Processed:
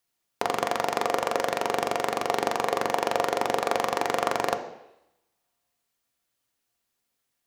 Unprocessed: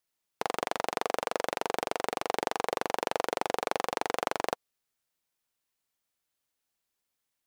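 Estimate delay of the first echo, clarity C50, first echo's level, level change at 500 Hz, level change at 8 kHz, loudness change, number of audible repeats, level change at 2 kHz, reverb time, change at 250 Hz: no echo audible, 11.0 dB, no echo audible, +5.5 dB, +4.5 dB, +5.5 dB, no echo audible, +4.5 dB, 0.85 s, +5.5 dB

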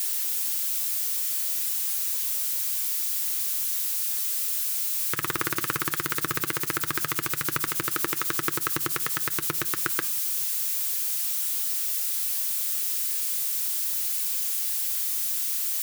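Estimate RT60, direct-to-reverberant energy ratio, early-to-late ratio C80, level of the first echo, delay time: 0.60 s, 11.0 dB, 24.5 dB, no echo audible, no echo audible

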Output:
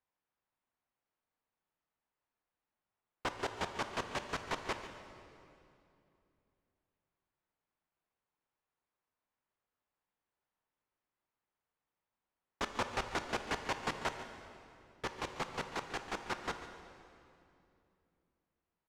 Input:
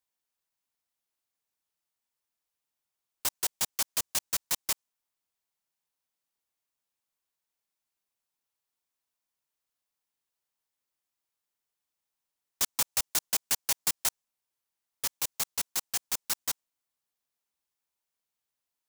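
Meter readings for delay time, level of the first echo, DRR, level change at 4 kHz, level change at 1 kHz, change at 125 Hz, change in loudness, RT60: 143 ms, −14.0 dB, 6.5 dB, −9.5 dB, +4.5 dB, +5.0 dB, −10.0 dB, 2.7 s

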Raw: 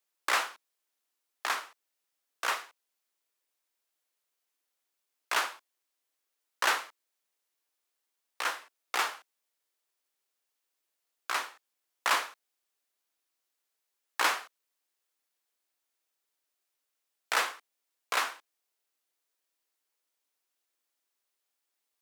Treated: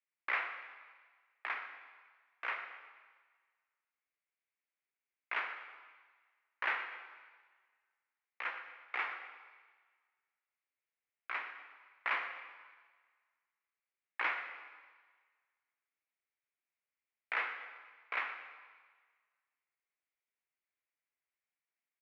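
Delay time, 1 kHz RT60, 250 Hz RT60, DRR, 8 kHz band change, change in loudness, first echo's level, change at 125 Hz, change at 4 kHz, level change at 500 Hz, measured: 122 ms, 1.5 s, 1.3 s, 7.0 dB, below −35 dB, −8.0 dB, −14.0 dB, can't be measured, −15.5 dB, −11.0 dB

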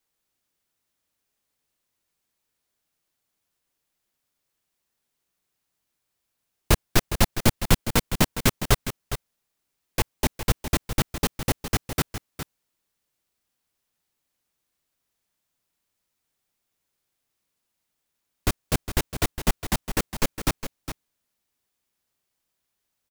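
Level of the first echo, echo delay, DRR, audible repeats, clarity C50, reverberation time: −10.5 dB, 410 ms, no reverb audible, 1, no reverb audible, no reverb audible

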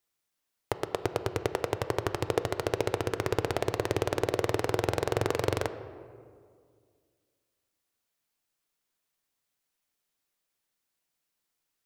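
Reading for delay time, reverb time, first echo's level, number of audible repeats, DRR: no echo audible, 2.1 s, no echo audible, no echo audible, 9.5 dB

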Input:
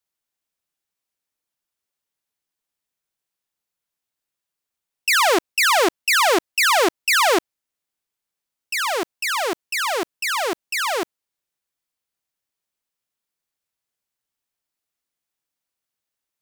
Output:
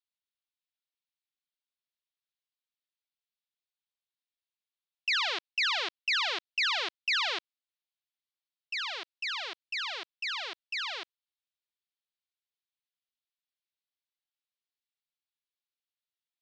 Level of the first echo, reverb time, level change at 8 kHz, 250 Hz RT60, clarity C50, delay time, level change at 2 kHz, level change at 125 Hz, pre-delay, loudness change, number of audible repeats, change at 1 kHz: no echo audible, no reverb audible, −22.5 dB, no reverb audible, no reverb audible, no echo audible, −11.5 dB, can't be measured, no reverb audible, −11.5 dB, no echo audible, −18.0 dB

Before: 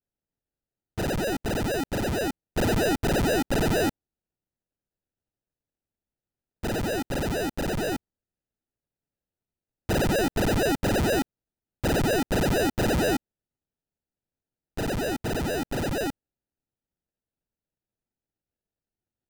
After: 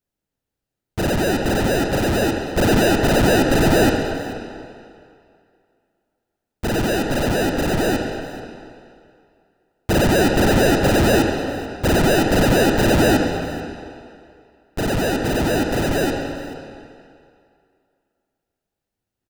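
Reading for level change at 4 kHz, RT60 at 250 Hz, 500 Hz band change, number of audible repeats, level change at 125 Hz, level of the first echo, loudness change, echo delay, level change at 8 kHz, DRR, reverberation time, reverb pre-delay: +8.5 dB, 2.2 s, +8.5 dB, 1, +8.0 dB, −19.0 dB, +8.0 dB, 435 ms, +7.0 dB, 2.0 dB, 2.4 s, 19 ms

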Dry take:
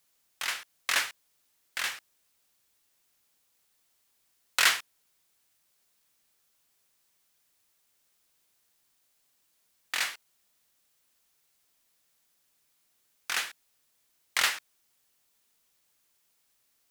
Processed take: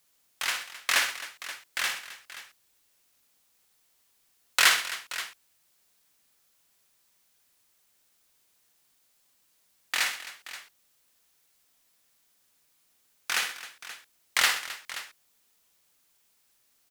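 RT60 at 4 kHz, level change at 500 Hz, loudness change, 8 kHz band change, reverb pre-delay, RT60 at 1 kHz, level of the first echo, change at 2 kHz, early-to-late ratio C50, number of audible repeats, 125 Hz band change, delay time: no reverb audible, +3.5 dB, +1.5 dB, +3.5 dB, no reverb audible, no reverb audible, −8.5 dB, +3.5 dB, no reverb audible, 4, can't be measured, 56 ms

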